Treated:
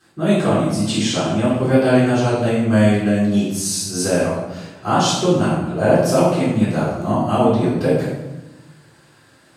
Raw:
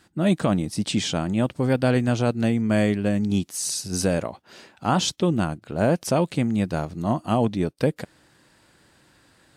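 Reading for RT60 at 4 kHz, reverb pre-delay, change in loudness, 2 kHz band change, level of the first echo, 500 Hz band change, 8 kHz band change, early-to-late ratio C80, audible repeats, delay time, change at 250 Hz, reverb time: 0.70 s, 3 ms, +6.0 dB, +6.0 dB, no echo audible, +7.5 dB, +5.0 dB, 3.5 dB, no echo audible, no echo audible, +5.5 dB, 1.1 s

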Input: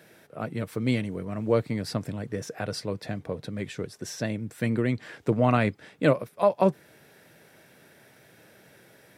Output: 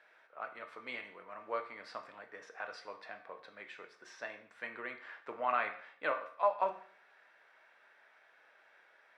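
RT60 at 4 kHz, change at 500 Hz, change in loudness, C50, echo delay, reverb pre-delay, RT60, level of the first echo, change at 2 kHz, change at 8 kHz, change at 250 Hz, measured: 0.50 s, −13.5 dB, −11.5 dB, 11.0 dB, no echo audible, 11 ms, 0.55 s, no echo audible, −5.0 dB, below −20 dB, −28.5 dB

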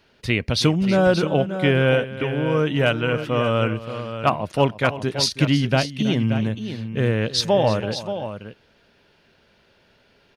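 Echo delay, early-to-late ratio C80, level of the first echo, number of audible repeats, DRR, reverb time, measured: 325 ms, no reverb audible, −15.5 dB, 2, no reverb audible, no reverb audible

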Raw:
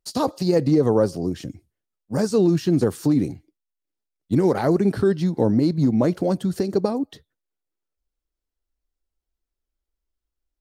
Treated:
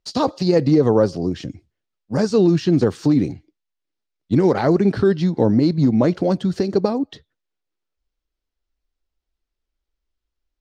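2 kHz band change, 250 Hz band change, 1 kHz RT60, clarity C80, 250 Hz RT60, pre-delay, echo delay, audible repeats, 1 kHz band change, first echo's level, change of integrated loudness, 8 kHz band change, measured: +4.0 dB, +3.0 dB, no reverb audible, no reverb audible, no reverb audible, no reverb audible, no echo audible, no echo audible, +3.0 dB, no echo audible, +3.0 dB, can't be measured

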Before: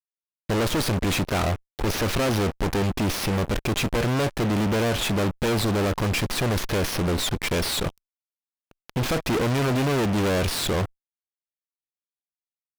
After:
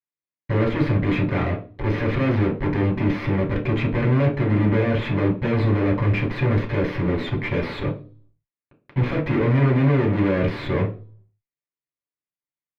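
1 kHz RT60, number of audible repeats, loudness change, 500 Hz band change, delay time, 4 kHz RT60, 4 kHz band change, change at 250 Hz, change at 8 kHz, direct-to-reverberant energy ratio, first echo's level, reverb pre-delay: 0.35 s, no echo audible, +2.5 dB, +1.5 dB, no echo audible, 0.35 s, −10.5 dB, +4.0 dB, below −25 dB, 0.5 dB, no echo audible, 3 ms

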